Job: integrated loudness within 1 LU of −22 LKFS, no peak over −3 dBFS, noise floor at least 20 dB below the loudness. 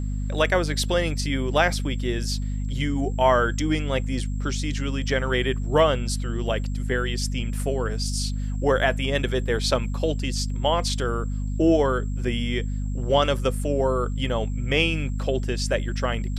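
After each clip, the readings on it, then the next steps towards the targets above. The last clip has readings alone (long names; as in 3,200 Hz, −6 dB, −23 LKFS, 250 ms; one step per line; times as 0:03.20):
mains hum 50 Hz; hum harmonics up to 250 Hz; level of the hum −24 dBFS; interfering tone 7,600 Hz; level of the tone −52 dBFS; integrated loudness −24.5 LKFS; sample peak −7.0 dBFS; target loudness −22.0 LKFS
→ hum removal 50 Hz, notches 5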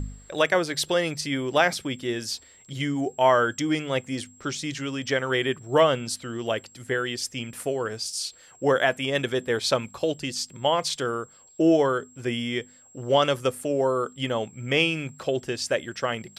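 mains hum none found; interfering tone 7,600 Hz; level of the tone −52 dBFS
→ notch filter 7,600 Hz, Q 30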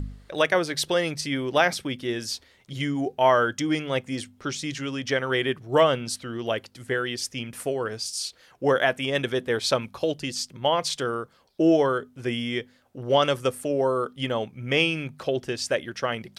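interfering tone none found; integrated loudness −26.0 LKFS; sample peak −8.0 dBFS; target loudness −22.0 LKFS
→ level +4 dB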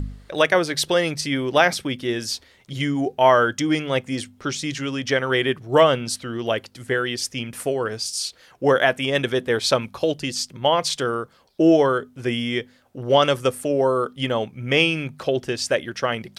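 integrated loudness −22.0 LKFS; sample peak −4.0 dBFS; background noise floor −55 dBFS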